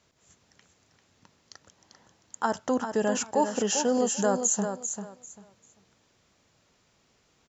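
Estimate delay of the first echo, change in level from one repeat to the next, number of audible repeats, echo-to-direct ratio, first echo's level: 394 ms, -13.5 dB, 3, -7.5 dB, -7.5 dB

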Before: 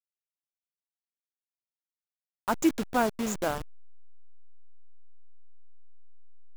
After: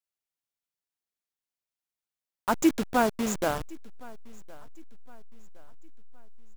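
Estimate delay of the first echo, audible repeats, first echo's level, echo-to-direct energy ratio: 1064 ms, 2, -23.0 dB, -22.5 dB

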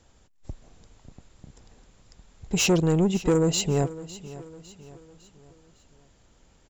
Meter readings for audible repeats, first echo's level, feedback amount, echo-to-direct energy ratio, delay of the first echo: 3, -17.0 dB, 45%, -16.0 dB, 555 ms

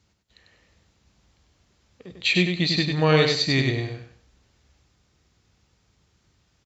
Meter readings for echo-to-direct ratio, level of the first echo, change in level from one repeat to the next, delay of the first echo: -4.0 dB, -4.5 dB, -11.5 dB, 97 ms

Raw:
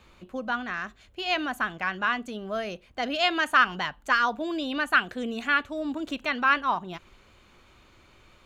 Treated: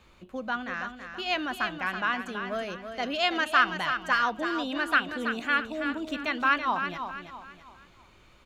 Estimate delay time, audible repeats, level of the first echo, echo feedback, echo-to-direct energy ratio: 328 ms, 4, -8.0 dB, 38%, -7.5 dB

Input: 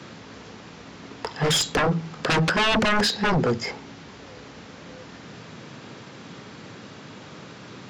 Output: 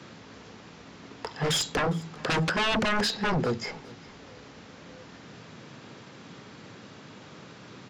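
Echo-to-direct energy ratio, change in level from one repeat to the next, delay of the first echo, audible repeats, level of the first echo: -22.0 dB, -11.0 dB, 406 ms, 2, -22.5 dB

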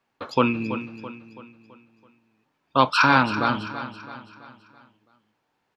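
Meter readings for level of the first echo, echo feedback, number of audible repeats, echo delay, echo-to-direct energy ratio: -12.0 dB, 46%, 4, 331 ms, -11.0 dB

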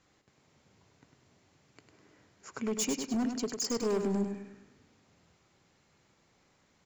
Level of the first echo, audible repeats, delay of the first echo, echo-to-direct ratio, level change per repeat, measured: -7.0 dB, 4, 101 ms, -6.0 dB, -7.5 dB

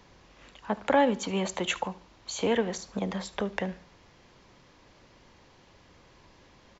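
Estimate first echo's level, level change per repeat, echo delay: -20.0 dB, -9.0 dB, 73 ms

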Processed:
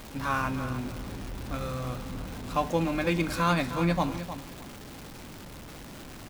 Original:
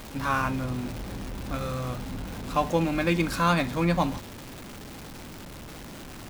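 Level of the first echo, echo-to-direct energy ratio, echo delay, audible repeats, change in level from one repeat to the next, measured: -11.5 dB, -11.5 dB, 308 ms, 2, -13.5 dB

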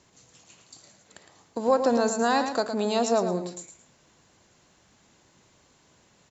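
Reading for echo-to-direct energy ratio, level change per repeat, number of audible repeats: -8.0 dB, -11.0 dB, 2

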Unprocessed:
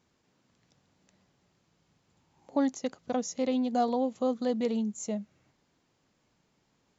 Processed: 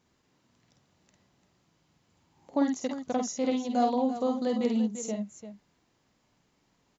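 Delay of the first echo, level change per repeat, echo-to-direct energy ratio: 50 ms, no regular repeats, -3.5 dB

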